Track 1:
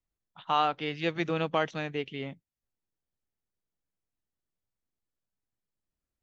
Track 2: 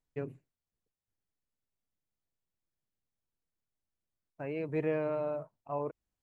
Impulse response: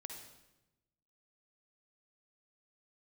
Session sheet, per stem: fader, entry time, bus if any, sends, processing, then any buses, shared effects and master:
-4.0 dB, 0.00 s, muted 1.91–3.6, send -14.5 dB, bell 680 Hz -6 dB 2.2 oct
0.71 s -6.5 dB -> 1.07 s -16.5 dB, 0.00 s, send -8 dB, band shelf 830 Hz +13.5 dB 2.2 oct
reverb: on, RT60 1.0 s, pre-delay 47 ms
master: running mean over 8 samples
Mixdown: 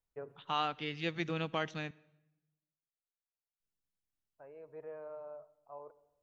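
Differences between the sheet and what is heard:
stem 2 -6.5 dB -> -17.5 dB; master: missing running mean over 8 samples

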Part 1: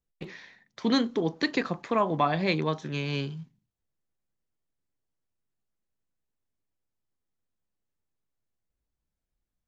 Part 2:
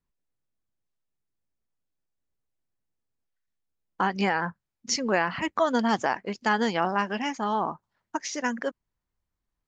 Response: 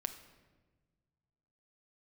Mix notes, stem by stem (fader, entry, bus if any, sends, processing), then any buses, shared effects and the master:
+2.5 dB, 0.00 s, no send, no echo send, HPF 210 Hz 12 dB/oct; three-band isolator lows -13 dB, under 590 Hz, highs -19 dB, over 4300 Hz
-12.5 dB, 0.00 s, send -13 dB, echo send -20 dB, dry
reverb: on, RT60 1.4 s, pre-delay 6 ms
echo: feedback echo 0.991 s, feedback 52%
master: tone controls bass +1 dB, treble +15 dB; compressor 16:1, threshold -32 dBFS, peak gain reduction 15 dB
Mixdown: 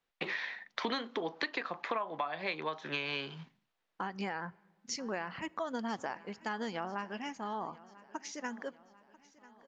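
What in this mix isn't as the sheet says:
stem 1 +2.5 dB -> +13.0 dB; master: missing tone controls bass +1 dB, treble +15 dB

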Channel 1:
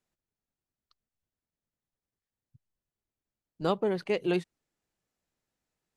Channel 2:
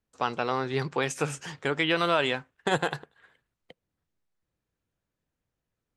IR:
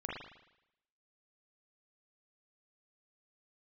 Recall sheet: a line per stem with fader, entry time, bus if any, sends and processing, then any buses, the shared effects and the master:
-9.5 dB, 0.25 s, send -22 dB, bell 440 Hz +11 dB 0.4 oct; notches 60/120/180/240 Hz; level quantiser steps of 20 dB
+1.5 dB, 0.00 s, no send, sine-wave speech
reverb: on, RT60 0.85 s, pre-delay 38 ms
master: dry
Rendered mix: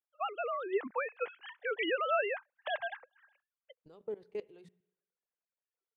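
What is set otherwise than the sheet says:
stem 1 -9.5 dB -> -16.0 dB; stem 2 +1.5 dB -> -7.0 dB

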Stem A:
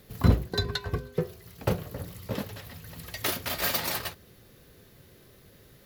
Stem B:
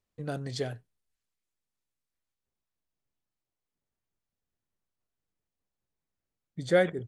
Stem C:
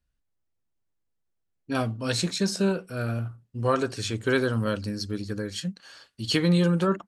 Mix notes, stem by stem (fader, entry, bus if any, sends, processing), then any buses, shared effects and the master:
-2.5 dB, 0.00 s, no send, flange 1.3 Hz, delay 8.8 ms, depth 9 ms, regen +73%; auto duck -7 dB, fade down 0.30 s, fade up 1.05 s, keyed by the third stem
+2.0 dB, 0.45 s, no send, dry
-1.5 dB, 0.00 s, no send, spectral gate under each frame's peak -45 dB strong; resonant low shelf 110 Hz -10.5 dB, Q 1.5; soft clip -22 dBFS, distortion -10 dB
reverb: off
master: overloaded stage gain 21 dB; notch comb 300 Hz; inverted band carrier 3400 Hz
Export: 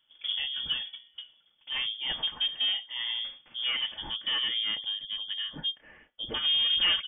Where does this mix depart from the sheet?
stem A -2.5 dB -> -11.0 dB; stem B: entry 0.45 s -> 0.10 s

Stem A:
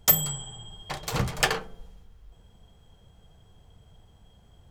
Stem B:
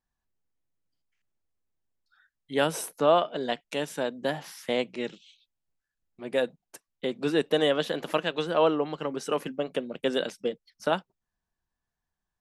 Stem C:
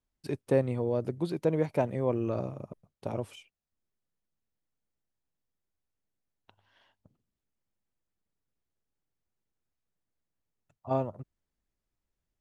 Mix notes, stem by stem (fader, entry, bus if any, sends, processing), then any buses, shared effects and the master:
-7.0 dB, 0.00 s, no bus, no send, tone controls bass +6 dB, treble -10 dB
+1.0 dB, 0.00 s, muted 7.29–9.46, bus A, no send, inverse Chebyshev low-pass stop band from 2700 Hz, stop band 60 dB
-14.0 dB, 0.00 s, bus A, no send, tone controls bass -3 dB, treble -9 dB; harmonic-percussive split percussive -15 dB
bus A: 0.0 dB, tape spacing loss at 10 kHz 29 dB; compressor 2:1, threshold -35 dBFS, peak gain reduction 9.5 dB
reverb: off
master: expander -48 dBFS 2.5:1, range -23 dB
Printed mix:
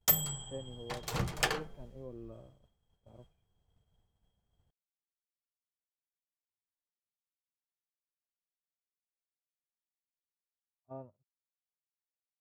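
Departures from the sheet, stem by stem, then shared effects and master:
stem A: missing tone controls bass +6 dB, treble -10 dB; stem B: muted

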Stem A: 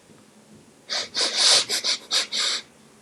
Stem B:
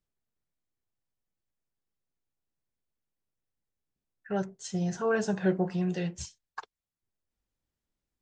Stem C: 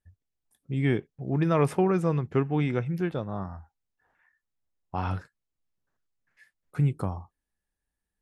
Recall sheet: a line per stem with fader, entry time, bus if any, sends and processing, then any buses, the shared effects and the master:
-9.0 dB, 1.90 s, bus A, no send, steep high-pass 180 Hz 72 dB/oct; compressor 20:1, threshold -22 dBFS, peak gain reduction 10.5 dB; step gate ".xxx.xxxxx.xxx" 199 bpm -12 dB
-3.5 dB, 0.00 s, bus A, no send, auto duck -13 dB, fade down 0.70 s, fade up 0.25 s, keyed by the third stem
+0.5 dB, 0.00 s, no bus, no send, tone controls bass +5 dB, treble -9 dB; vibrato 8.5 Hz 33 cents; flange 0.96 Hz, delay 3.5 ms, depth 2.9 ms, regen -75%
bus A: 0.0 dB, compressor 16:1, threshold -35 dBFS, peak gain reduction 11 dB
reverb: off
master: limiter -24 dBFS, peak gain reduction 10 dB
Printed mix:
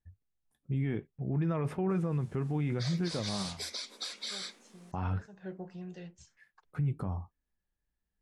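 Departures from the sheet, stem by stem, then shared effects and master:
stem A: missing step gate ".xxx.xxxxx.xxx" 199 bpm -12 dB; stem B -3.5 dB -> -14.0 dB; stem C: missing vibrato 8.5 Hz 33 cents

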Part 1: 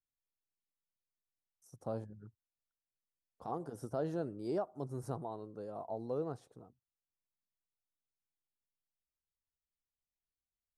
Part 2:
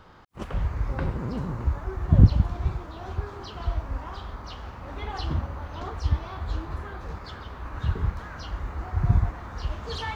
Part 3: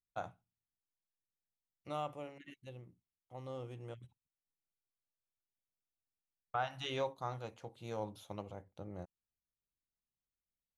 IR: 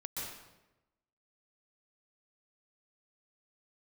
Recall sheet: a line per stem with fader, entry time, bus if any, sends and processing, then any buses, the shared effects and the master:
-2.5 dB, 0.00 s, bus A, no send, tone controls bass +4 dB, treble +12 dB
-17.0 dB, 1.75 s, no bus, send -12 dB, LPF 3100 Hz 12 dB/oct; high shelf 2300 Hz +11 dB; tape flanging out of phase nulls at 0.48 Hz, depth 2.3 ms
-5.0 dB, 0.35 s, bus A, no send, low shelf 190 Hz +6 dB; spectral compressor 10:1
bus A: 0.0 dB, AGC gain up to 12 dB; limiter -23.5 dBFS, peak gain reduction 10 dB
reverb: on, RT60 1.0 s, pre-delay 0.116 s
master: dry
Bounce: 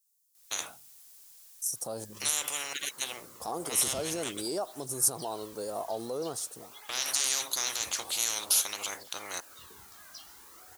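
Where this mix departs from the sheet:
stem 2: missing LPF 3100 Hz 12 dB/oct; stem 3: missing low shelf 190 Hz +6 dB; master: extra tone controls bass -15 dB, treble +14 dB

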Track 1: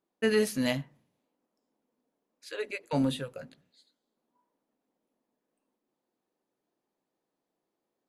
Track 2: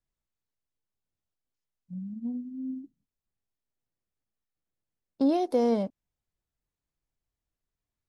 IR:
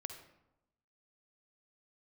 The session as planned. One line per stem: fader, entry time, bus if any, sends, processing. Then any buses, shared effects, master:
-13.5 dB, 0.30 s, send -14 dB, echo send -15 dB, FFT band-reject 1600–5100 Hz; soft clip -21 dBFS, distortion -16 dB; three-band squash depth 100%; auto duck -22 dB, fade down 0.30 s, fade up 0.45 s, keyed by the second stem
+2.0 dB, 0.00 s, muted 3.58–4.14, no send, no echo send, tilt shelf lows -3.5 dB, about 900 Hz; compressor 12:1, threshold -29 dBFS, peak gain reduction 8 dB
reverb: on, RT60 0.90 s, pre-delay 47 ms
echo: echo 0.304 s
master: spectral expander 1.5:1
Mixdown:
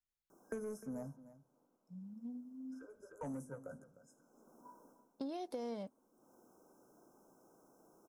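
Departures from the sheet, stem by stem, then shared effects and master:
stem 2 +2.0 dB -> -9.5 dB; master: missing spectral expander 1.5:1

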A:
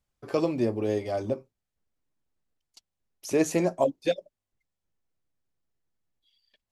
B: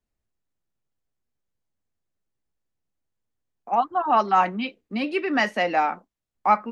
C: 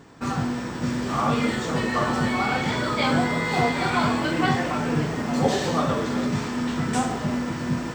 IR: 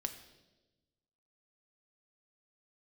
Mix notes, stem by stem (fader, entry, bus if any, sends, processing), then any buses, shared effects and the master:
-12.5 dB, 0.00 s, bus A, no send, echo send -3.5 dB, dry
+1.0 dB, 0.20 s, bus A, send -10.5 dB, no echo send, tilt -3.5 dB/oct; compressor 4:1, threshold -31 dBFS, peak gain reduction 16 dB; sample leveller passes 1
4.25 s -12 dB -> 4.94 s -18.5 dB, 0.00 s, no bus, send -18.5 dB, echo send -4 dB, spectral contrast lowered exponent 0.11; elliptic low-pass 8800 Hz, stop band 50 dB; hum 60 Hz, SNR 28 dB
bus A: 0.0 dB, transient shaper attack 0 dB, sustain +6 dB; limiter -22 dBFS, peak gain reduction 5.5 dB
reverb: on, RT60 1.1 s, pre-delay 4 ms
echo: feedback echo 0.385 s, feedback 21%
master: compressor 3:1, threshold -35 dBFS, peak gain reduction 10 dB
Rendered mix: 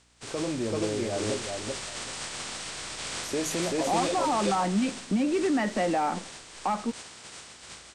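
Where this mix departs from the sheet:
stem A -12.5 dB -> -3.5 dB; stem C: send off; master: missing compressor 3:1, threshold -35 dBFS, peak gain reduction 10 dB

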